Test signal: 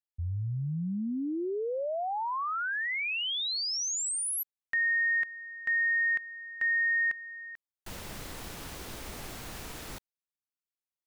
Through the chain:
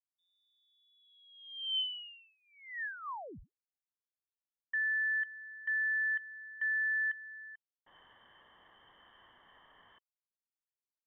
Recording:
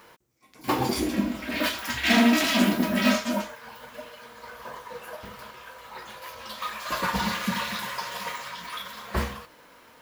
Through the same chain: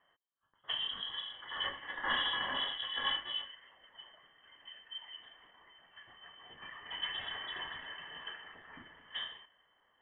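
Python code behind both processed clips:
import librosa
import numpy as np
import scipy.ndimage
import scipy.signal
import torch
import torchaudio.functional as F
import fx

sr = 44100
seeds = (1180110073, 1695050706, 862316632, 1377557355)

y = fx.vowel_filter(x, sr, vowel='e')
y = fx.freq_invert(y, sr, carrier_hz=3600)
y = fx.env_lowpass(y, sr, base_hz=1100.0, full_db=-35.0)
y = F.gain(torch.from_numpy(y), 1.0).numpy()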